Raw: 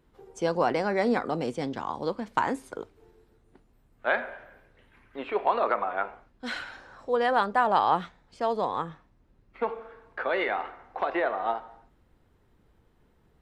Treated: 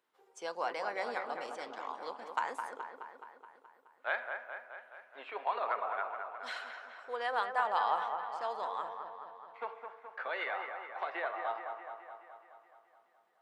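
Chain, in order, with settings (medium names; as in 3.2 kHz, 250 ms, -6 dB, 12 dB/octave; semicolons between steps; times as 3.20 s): high-pass 730 Hz 12 dB/octave; on a send: feedback echo behind a low-pass 212 ms, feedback 63%, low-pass 2.3 kHz, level -6 dB; on the sum: trim -7 dB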